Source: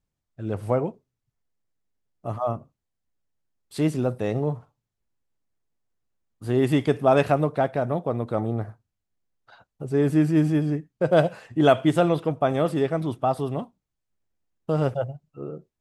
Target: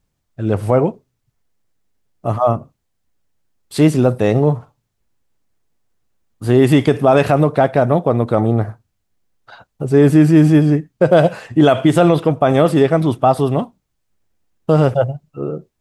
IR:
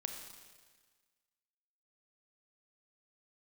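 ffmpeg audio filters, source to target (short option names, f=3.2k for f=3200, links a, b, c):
-af "alimiter=level_in=12.5dB:limit=-1dB:release=50:level=0:latency=1,volume=-1dB"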